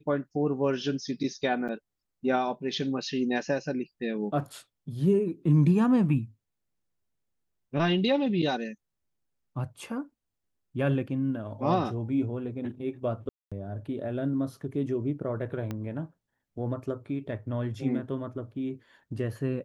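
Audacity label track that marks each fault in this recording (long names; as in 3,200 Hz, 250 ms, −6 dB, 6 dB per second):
1.680000	1.690000	drop-out 7.8 ms
13.290000	13.520000	drop-out 226 ms
15.710000	15.710000	click −21 dBFS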